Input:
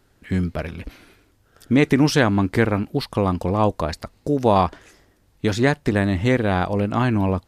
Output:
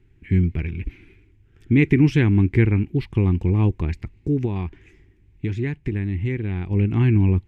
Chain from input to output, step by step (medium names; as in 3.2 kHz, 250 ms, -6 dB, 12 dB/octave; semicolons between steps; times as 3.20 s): FFT filter 110 Hz 0 dB, 250 Hz -9 dB, 370 Hz -4 dB, 590 Hz -30 dB, 840 Hz -19 dB, 1.3 kHz -23 dB, 2.3 kHz -4 dB, 4.4 kHz -25 dB, 7.2 kHz -22 dB, 10 kHz -29 dB; 4.45–6.71 s: compression 2:1, threshold -34 dBFS, peak gain reduction 8.5 dB; trim +7 dB